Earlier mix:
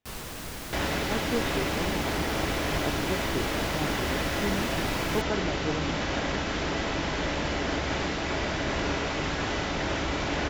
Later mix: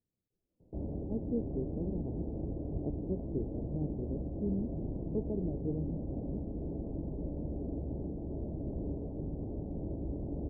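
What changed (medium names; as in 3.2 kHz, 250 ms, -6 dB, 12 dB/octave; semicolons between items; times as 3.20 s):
first sound: muted; second sound -4.0 dB; master: add Gaussian low-pass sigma 19 samples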